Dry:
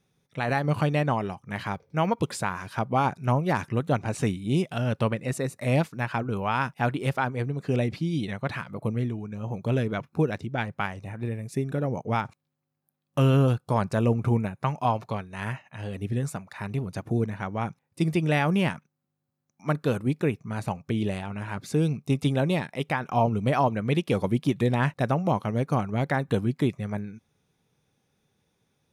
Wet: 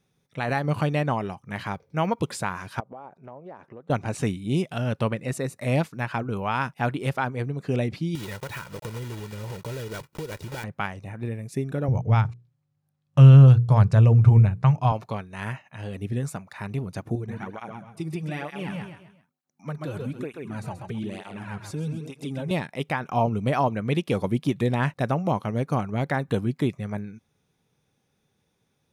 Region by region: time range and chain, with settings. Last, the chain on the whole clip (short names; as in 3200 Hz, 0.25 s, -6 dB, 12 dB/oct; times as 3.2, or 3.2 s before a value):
2.8–3.9 band-pass 580 Hz, Q 1.3 + compressor 4:1, threshold -40 dBFS
8.15–10.64 block floating point 3-bit + comb 2.1 ms, depth 51% + compressor, threshold -30 dBFS
11.88–14.92 LPF 7500 Hz + resonant low shelf 170 Hz +12 dB, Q 1.5 + notches 60/120/180/240/300/360/420/480 Hz
17.15–22.51 feedback echo 0.132 s, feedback 37%, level -8 dB + compressor 3:1, threshold -26 dBFS + tape flanging out of phase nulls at 1.1 Hz, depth 4.8 ms
whole clip: dry